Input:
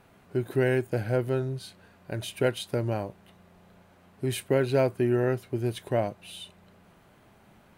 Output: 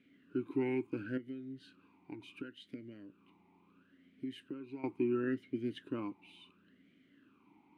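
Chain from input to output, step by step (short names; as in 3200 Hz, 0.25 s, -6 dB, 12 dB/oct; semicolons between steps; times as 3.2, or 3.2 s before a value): 1.17–4.84 compressor 12:1, threshold -34 dBFS, peak gain reduction 15.5 dB; vowel sweep i-u 0.72 Hz; gain +4.5 dB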